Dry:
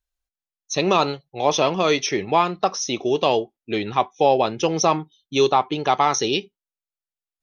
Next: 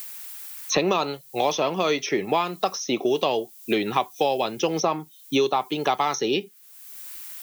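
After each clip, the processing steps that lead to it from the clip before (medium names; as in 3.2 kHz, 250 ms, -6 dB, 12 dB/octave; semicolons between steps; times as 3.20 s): high-pass 150 Hz 12 dB/octave; added noise violet -52 dBFS; three bands compressed up and down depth 100%; trim -4.5 dB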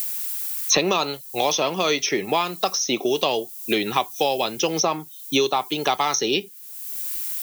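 treble shelf 3.3 kHz +10.5 dB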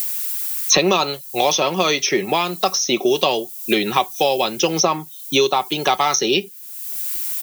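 comb 5.4 ms, depth 33%; trim +3.5 dB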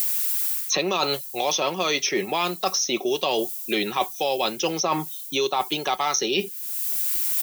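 reverse; compression 6:1, threshold -25 dBFS, peak gain reduction 14.5 dB; reverse; bass shelf 150 Hz -8 dB; trim +4.5 dB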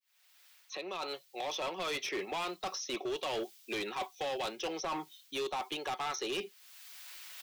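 fade-in on the opening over 1.91 s; three-band isolator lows -19 dB, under 280 Hz, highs -20 dB, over 4.7 kHz; overload inside the chain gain 24 dB; trim -8 dB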